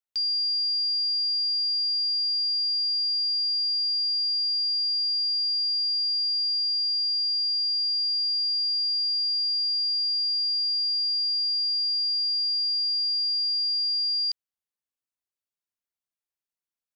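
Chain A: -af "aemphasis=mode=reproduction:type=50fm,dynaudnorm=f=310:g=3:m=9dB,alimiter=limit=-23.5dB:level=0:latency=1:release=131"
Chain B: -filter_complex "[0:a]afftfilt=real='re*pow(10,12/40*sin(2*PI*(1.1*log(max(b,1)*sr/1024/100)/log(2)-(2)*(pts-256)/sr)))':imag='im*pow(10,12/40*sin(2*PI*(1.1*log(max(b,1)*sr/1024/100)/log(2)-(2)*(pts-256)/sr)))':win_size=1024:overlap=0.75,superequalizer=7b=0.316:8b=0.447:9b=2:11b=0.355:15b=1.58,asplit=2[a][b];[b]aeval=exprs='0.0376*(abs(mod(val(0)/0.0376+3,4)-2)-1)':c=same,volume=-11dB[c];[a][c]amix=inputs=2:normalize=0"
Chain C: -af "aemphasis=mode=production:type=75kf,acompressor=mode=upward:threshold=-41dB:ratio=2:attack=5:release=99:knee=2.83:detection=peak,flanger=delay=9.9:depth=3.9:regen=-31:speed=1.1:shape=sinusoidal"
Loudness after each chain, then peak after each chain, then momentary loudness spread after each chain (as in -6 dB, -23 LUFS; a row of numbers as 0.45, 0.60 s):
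-23.5, -20.5, -18.5 LUFS; -23.5, -17.0, -15.0 dBFS; 0, 2, 0 LU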